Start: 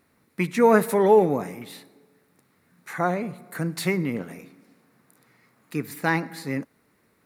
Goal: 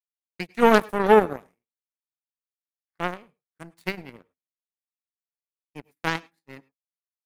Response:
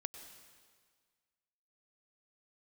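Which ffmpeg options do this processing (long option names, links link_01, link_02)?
-filter_complex "[0:a]aeval=exprs='0.708*(cos(1*acos(clip(val(0)/0.708,-1,1)))-cos(1*PI/2))+0.1*(cos(7*acos(clip(val(0)/0.708,-1,1)))-cos(7*PI/2))':channel_layout=same,agate=range=-33dB:threshold=-50dB:ratio=3:detection=peak,asplit=2[link_01][link_02];[1:a]atrim=start_sample=2205,afade=type=out:start_time=0.16:duration=0.01,atrim=end_sample=7497[link_03];[link_02][link_03]afir=irnorm=-1:irlink=0,volume=-2dB[link_04];[link_01][link_04]amix=inputs=2:normalize=0,volume=-2.5dB"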